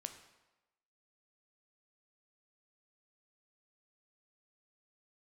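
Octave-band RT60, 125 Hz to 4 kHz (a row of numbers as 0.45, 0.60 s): 0.90, 0.95, 1.0, 1.1, 0.95, 0.85 s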